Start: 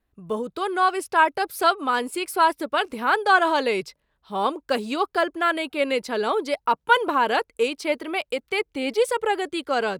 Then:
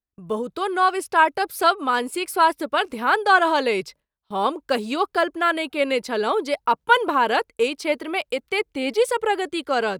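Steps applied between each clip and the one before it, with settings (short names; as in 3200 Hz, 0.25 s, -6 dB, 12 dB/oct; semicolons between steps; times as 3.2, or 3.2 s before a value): gate with hold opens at -39 dBFS; gain +1.5 dB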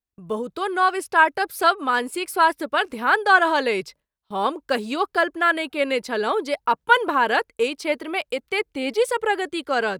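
dynamic EQ 1700 Hz, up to +5 dB, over -36 dBFS, Q 3.4; gain -1 dB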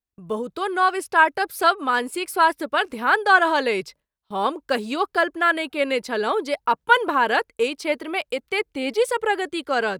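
nothing audible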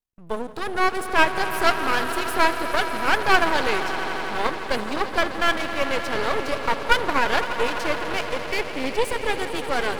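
swelling echo 85 ms, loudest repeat 5, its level -14 dB; half-wave rectifier; gain +1.5 dB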